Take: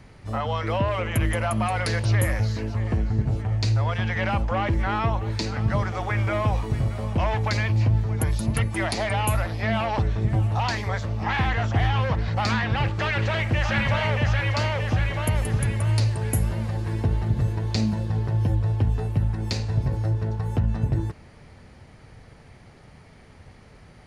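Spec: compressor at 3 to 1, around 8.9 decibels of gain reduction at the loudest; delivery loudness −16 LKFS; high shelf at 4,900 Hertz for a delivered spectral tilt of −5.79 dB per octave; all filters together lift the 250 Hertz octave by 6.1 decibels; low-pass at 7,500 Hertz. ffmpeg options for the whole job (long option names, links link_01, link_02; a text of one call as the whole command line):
ffmpeg -i in.wav -af "lowpass=7500,equalizer=frequency=250:width_type=o:gain=8,highshelf=frequency=4900:gain=6.5,acompressor=threshold=-28dB:ratio=3,volume=14dB" out.wav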